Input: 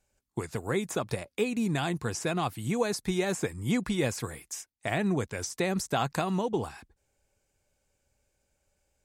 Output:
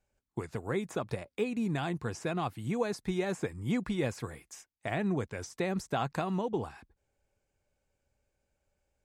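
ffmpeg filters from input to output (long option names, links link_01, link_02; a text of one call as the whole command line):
ffmpeg -i in.wav -af "highshelf=frequency=4300:gain=-10.5,volume=-3dB" out.wav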